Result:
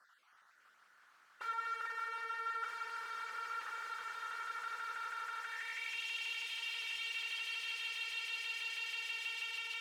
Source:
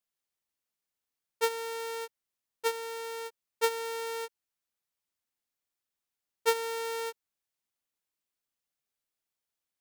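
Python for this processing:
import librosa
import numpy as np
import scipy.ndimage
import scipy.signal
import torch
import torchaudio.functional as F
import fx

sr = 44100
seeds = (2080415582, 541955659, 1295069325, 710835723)

p1 = fx.spec_dropout(x, sr, seeds[0], share_pct=38)
p2 = fx.weighting(p1, sr, curve='A', at=(6.54, 6.96), fade=0.02)
p3 = p2 + fx.echo_swell(p2, sr, ms=162, loudest=8, wet_db=-4.0, dry=0)
p4 = fx.over_compress(p3, sr, threshold_db=-36.0, ratio=-1.0, at=(1.64, 2.68), fade=0.02)
p5 = fx.power_curve(p4, sr, exponent=0.7)
p6 = fx.low_shelf(p5, sr, hz=330.0, db=6.5)
p7 = fx.hum_notches(p6, sr, base_hz=50, count=10)
p8 = (np.mod(10.0 ** (31.5 / 20.0) * p7 + 1.0, 2.0) - 1.0) / 10.0 ** (31.5 / 20.0)
p9 = fx.tube_stage(p8, sr, drive_db=49.0, bias=0.4)
p10 = fx.filter_sweep_bandpass(p9, sr, from_hz=1400.0, to_hz=2800.0, start_s=5.37, end_s=6.03, q=4.6)
y = p10 * 10.0 ** (18.0 / 20.0)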